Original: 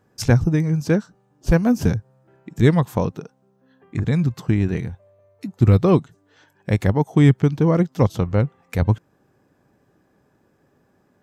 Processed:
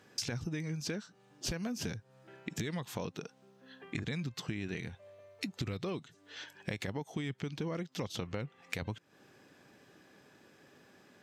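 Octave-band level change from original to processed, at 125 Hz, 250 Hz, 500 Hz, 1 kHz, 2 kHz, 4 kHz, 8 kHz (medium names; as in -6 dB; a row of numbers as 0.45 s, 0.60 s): -22.5 dB, -20.0 dB, -19.5 dB, -18.5 dB, -11.5 dB, -3.5 dB, no reading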